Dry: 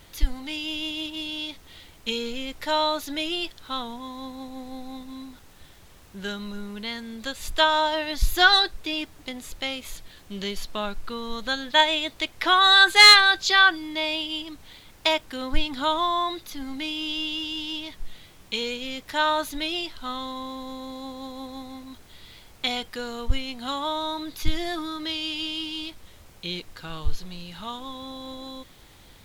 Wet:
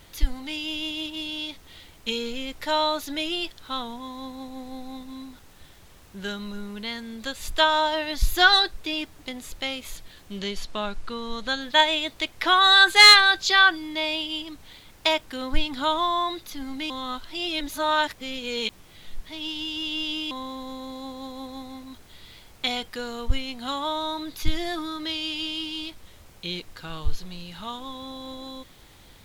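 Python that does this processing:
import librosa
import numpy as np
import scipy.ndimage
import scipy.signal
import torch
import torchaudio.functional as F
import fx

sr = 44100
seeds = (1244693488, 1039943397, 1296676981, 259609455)

y = fx.lowpass(x, sr, hz=9700.0, slope=12, at=(10.39, 11.61))
y = fx.edit(y, sr, fx.reverse_span(start_s=16.9, length_s=3.41), tone=tone)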